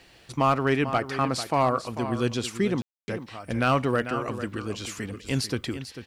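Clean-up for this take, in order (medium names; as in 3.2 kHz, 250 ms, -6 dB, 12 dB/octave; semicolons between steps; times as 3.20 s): clip repair -12.5 dBFS; room tone fill 2.82–3.08 s; inverse comb 444 ms -11.5 dB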